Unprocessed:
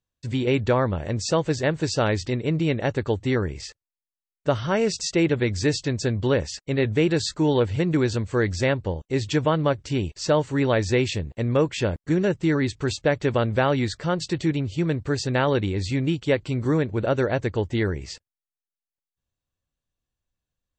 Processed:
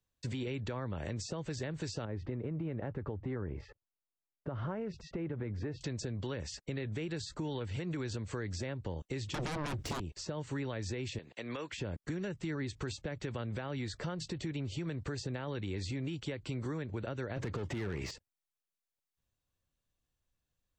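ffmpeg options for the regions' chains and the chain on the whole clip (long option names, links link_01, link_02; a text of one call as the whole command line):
ffmpeg -i in.wav -filter_complex "[0:a]asettb=1/sr,asplit=3[link_01][link_02][link_03];[link_01]atrim=end=2.054[link_04];[link_02]atrim=start=2.05:end=5.81,asetpts=PTS-STARTPTS,afade=type=in:duration=0.004:curve=qsin,afade=type=out:start_time=3.756:duration=0.004:curve=qsin,lowpass=1100,acompressor=threshold=-27dB:ratio=2.5:attack=3.2:release=140:knee=1:detection=peak[link_05];[link_03]atrim=start=5.806[link_06];[link_04][link_05]acrossfade=duration=0.004:curve1=hsin:curve2=qsin[link_07];[link_07][link_06]acrossfade=duration=0.004:curve1=qsin:curve2=hsin,asettb=1/sr,asplit=3[link_08][link_09][link_10];[link_08]atrim=end=9.344[link_11];[link_09]atrim=start=9.34:end=10,asetpts=PTS-STARTPTS,afade=type=in:duration=0.004:curve=qsin,afade=type=out:start_time=0.656:duration=0.004:curve=qsin,acompressor=threshold=-21dB:ratio=20:attack=3.2:release=140:knee=1:detection=peak,aeval=exprs='0.188*sin(PI/2*7.94*val(0)/0.188)':channel_layout=same[link_12];[link_10]atrim=start=9.996[link_13];[link_11][link_12]acrossfade=duration=0.004:curve1=hsin:curve2=qsin[link_14];[link_14][link_13]acrossfade=duration=0.004:curve1=qsin:curve2=hsin,asettb=1/sr,asplit=3[link_15][link_16][link_17];[link_15]atrim=end=11.184[link_18];[link_16]atrim=start=11.18:end=11.72,asetpts=PTS-STARTPTS,afade=type=in:duration=0.004:curve=qsin,afade=type=out:start_time=0.536:duration=0.004:curve=qsin,highpass=240,lowpass=5000,tiltshelf=frequency=1100:gain=-9[link_19];[link_17]atrim=start=11.716[link_20];[link_18][link_19]acrossfade=duration=0.004:curve1=hsin:curve2=qsin[link_21];[link_21][link_20]acrossfade=duration=0.004:curve1=qsin:curve2=hsin,asettb=1/sr,asplit=3[link_22][link_23][link_24];[link_22]atrim=end=17.364[link_25];[link_23]atrim=start=17.36:end=18.11,asetpts=PTS-STARTPTS,afade=type=in:duration=0.004:curve=qsin,afade=type=out:start_time=0.746:duration=0.004:curve=qsin,acompressor=threshold=-25dB:ratio=6:attack=3.2:release=140:knee=1:detection=peak,asplit=2[link_26][link_27];[link_27]highpass=frequency=720:poles=1,volume=27dB,asoftclip=type=tanh:threshold=-16.5dB[link_28];[link_26][link_28]amix=inputs=2:normalize=0,lowpass=frequency=2800:poles=1,volume=-6dB,equalizer=frequency=120:width=0.32:gain=11[link_29];[link_24]atrim=start=18.106[link_30];[link_25][link_29]acrossfade=duration=0.004:curve1=hsin:curve2=qsin[link_31];[link_31][link_30]acrossfade=duration=0.004:curve1=qsin:curve2=hsin,acompressor=threshold=-29dB:ratio=3,alimiter=level_in=1dB:limit=-24dB:level=0:latency=1:release=102,volume=-1dB,acrossover=split=160|330|1000[link_32][link_33][link_34][link_35];[link_32]acompressor=threshold=-41dB:ratio=4[link_36];[link_33]acompressor=threshold=-43dB:ratio=4[link_37];[link_34]acompressor=threshold=-44dB:ratio=4[link_38];[link_35]acompressor=threshold=-44dB:ratio=4[link_39];[link_36][link_37][link_38][link_39]amix=inputs=4:normalize=0" out.wav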